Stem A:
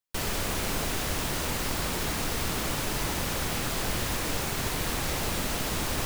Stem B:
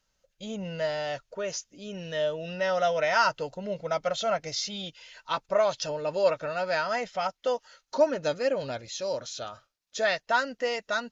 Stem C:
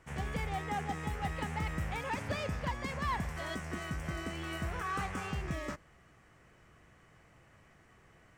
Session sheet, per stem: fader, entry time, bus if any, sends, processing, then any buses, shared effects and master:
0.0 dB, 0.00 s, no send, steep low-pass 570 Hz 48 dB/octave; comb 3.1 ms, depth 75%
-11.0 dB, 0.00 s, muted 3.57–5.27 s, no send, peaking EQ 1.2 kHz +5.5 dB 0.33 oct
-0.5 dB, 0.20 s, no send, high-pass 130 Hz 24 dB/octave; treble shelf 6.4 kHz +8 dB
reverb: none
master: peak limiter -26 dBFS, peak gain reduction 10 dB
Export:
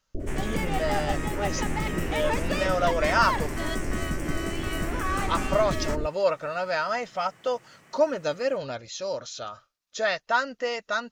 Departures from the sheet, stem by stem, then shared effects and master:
stem B -11.0 dB -> 0.0 dB; stem C -0.5 dB -> +6.5 dB; master: missing peak limiter -26 dBFS, peak gain reduction 10 dB

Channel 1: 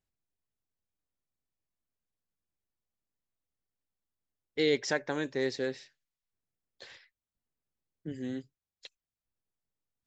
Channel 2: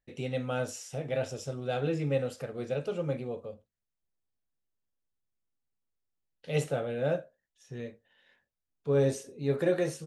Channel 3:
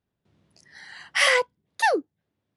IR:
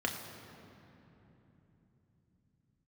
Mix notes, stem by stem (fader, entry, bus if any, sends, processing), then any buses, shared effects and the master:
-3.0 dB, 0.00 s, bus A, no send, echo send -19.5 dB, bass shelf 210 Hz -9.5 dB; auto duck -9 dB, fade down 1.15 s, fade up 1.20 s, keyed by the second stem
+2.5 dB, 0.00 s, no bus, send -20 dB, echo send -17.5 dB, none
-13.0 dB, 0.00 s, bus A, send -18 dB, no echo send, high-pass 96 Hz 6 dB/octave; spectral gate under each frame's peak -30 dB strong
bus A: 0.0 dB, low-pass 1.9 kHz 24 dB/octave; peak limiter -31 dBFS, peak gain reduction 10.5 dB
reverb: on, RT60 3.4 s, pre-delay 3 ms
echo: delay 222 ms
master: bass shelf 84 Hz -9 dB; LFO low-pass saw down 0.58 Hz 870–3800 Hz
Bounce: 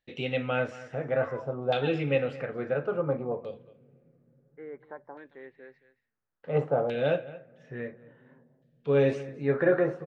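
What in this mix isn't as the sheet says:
stem 1 -3.0 dB -> -12.5 dB; stem 3 -13.0 dB -> -23.5 dB; reverb return -6.5 dB

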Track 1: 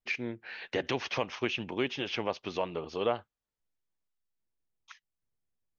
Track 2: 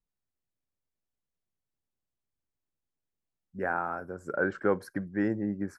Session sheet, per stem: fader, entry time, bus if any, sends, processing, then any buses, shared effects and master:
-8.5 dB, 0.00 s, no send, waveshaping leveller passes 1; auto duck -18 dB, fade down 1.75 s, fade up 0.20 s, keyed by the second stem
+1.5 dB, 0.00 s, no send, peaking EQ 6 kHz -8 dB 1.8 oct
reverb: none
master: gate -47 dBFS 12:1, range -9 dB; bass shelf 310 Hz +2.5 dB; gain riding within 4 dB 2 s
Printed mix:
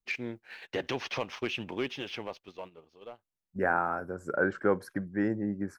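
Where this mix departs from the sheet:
stem 2: missing peaking EQ 6 kHz -8 dB 1.8 oct; master: missing bass shelf 310 Hz +2.5 dB

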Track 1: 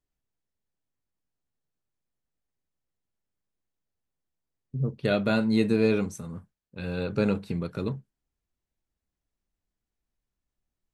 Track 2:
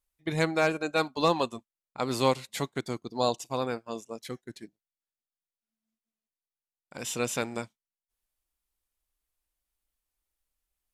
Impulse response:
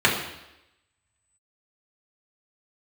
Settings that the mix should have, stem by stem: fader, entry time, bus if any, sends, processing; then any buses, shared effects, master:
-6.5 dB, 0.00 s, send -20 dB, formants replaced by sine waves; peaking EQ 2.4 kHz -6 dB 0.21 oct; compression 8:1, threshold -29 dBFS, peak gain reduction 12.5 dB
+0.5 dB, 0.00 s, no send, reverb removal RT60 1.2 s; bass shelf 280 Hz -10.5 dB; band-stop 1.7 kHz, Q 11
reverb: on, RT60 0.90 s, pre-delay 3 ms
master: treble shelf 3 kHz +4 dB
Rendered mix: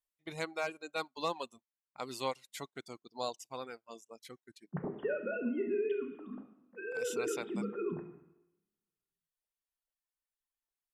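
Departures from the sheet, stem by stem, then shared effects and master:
stem 2 +0.5 dB -> -8.5 dB; master: missing treble shelf 3 kHz +4 dB

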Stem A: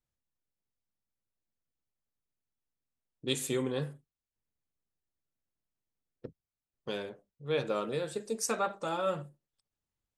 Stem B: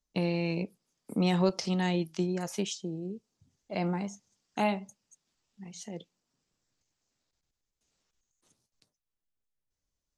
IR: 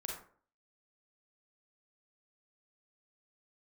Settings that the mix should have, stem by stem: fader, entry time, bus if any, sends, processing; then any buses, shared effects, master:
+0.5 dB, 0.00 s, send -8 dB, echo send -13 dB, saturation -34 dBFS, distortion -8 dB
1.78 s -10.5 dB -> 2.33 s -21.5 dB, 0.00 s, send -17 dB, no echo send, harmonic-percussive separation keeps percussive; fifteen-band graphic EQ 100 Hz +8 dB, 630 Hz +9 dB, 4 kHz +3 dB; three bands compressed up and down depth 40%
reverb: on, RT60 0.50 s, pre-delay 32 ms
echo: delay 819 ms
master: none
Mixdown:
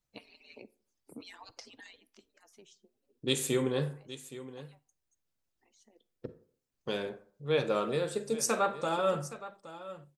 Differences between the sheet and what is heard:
stem A: missing saturation -34 dBFS, distortion -8 dB; stem B: missing fifteen-band graphic EQ 100 Hz +8 dB, 630 Hz +9 dB, 4 kHz +3 dB

